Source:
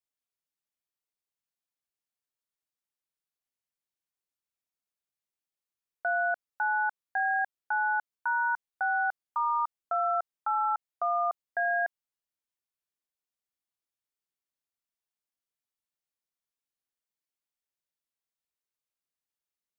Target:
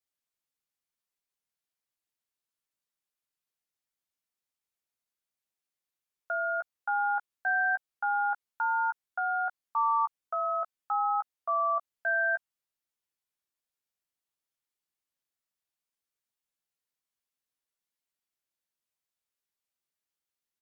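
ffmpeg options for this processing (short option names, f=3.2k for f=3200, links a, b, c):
-filter_complex "[0:a]acrossover=split=800[a][b];[a]alimiter=level_in=16dB:limit=-24dB:level=0:latency=1,volume=-16dB[c];[b]asplit=2[d][e];[e]adelay=14,volume=-5dB[f];[d][f]amix=inputs=2:normalize=0[g];[c][g]amix=inputs=2:normalize=0,asetrate=42336,aresample=44100"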